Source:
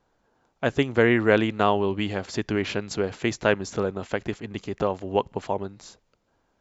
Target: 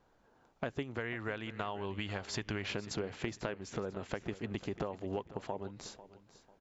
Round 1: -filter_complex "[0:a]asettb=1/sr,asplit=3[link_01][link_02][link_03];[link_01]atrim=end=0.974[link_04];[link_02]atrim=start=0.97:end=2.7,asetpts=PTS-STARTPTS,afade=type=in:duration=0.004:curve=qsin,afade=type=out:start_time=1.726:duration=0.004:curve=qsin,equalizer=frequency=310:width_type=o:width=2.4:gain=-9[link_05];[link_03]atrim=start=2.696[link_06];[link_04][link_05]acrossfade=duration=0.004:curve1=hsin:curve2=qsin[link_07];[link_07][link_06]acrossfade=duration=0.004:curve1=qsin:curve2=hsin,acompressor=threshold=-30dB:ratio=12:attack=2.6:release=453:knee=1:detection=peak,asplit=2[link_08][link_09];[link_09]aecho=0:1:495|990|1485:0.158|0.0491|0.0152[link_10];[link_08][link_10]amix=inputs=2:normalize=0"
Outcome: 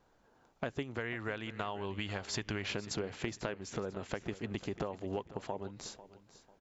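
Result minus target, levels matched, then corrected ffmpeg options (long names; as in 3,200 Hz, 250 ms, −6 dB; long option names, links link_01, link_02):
8,000 Hz band +2.5 dB
-filter_complex "[0:a]asettb=1/sr,asplit=3[link_01][link_02][link_03];[link_01]atrim=end=0.974[link_04];[link_02]atrim=start=0.97:end=2.7,asetpts=PTS-STARTPTS,afade=type=in:duration=0.004:curve=qsin,afade=type=out:start_time=1.726:duration=0.004:curve=qsin,equalizer=frequency=310:width_type=o:width=2.4:gain=-9[link_05];[link_03]atrim=start=2.696[link_06];[link_04][link_05]acrossfade=duration=0.004:curve1=hsin:curve2=qsin[link_07];[link_07][link_06]acrossfade=duration=0.004:curve1=qsin:curve2=hsin,acompressor=threshold=-30dB:ratio=12:attack=2.6:release=453:knee=1:detection=peak,highshelf=frequency=5400:gain=-5,asplit=2[link_08][link_09];[link_09]aecho=0:1:495|990|1485:0.158|0.0491|0.0152[link_10];[link_08][link_10]amix=inputs=2:normalize=0"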